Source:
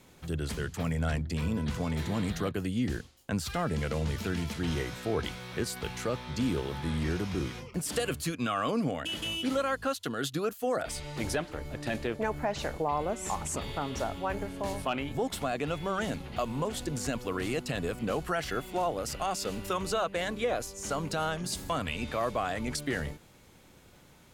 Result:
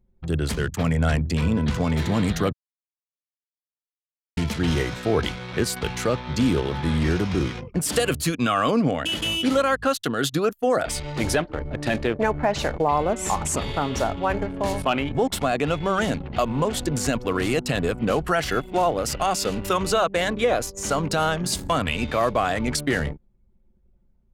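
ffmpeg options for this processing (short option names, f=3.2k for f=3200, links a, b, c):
-filter_complex "[0:a]asplit=3[a][b][c];[a]atrim=end=2.53,asetpts=PTS-STARTPTS,afade=t=out:st=2.526:d=0.004:c=hsin[d];[b]atrim=start=2.53:end=4.37,asetpts=PTS-STARTPTS,volume=0[e];[c]atrim=start=4.37,asetpts=PTS-STARTPTS,afade=t=in:d=0.004:c=hsin[f];[d][e][f]concat=n=3:v=0:a=1,anlmdn=0.158,volume=9dB"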